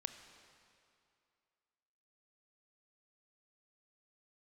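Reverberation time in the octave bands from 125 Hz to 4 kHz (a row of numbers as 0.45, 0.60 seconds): 2.3, 2.4, 2.5, 2.6, 2.3, 2.1 seconds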